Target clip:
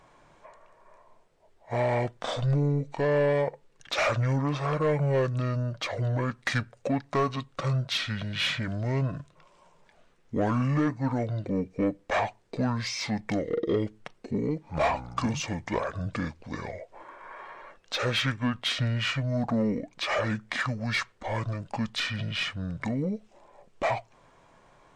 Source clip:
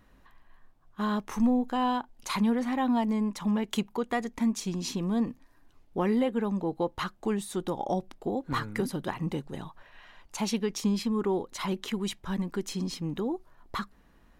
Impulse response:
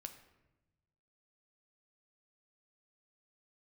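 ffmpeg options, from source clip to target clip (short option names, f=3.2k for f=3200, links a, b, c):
-filter_complex "[0:a]asetrate=25442,aresample=44100,asplit=2[a][b];[b]highpass=f=720:p=1,volume=17dB,asoftclip=type=tanh:threshold=-15dB[c];[a][c]amix=inputs=2:normalize=0,lowpass=f=4.1k:p=1,volume=-6dB"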